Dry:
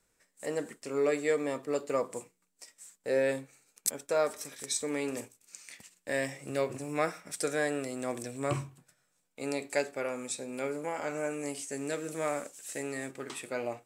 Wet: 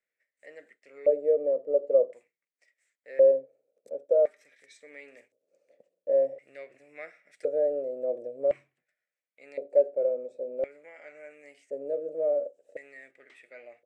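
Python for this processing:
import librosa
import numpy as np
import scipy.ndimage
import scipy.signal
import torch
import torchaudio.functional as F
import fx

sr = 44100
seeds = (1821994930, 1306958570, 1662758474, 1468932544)

y = fx.filter_lfo_bandpass(x, sr, shape='square', hz=0.47, low_hz=540.0, high_hz=2000.0, q=4.9)
y = fx.low_shelf_res(y, sr, hz=760.0, db=8.0, q=3.0)
y = F.gain(torch.from_numpy(y), -2.0).numpy()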